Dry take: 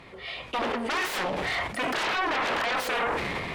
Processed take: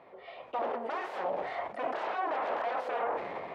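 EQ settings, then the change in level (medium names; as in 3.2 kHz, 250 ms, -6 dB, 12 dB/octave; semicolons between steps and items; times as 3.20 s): band-pass filter 660 Hz, Q 1.8; 0.0 dB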